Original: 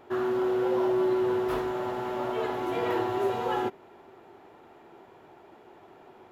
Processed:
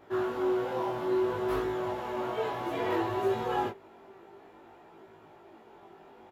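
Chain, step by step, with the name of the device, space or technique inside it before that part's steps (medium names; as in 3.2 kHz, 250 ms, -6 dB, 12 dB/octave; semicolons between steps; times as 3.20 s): double-tracked vocal (doubling 18 ms -3 dB; chorus 0.59 Hz, delay 18.5 ms, depth 4.7 ms)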